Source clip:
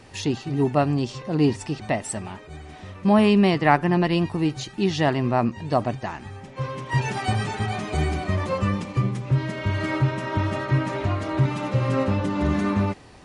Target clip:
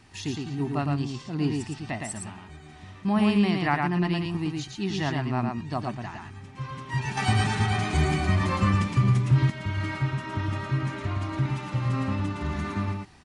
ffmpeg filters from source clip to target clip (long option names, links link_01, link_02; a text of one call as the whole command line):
ffmpeg -i in.wav -filter_complex "[0:a]aecho=1:1:113:0.668,asettb=1/sr,asplit=3[link_01][link_02][link_03];[link_01]atrim=end=7.174[link_04];[link_02]atrim=start=7.17:end=9.5,asetpts=PTS-STARTPTS,afade=type=in:duration=0.004:curve=qsin,afade=type=out:start_time=2.326:duration=0.004:curve=qsin,acontrast=83[link_05];[link_03]atrim=start=9.496[link_06];[link_04][link_05]acrossfade=duration=0.004:curve1=hsin:curve2=qsin[link_07];[link_07][link_06]acrossfade=duration=0.004:curve1=qsin:curve2=hsin,equalizer=frequency=520:width=2.3:gain=-13,volume=-5.5dB" out.wav